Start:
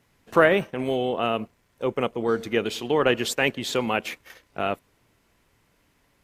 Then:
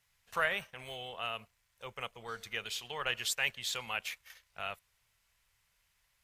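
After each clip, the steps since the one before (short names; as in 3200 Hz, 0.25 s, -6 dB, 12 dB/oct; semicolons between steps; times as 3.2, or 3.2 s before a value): passive tone stack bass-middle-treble 10-0-10; gain -3.5 dB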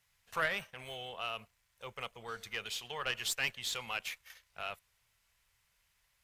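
one diode to ground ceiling -25 dBFS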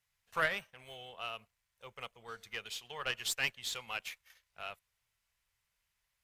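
upward expander 1.5:1, over -49 dBFS; gain +2 dB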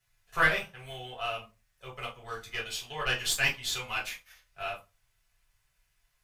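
reverb RT60 0.25 s, pre-delay 3 ms, DRR -4.5 dB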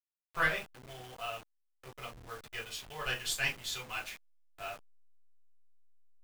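level-crossing sampler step -40 dBFS; gain -5.5 dB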